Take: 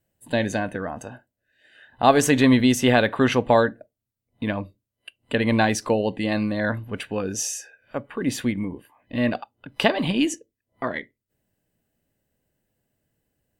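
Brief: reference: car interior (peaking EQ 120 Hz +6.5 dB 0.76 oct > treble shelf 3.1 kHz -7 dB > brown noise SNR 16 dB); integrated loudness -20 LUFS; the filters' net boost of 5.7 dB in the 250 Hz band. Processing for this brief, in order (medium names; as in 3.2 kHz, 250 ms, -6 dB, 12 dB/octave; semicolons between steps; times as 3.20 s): peaking EQ 120 Hz +6.5 dB 0.76 oct; peaking EQ 250 Hz +5.5 dB; treble shelf 3.1 kHz -7 dB; brown noise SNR 16 dB; trim -1 dB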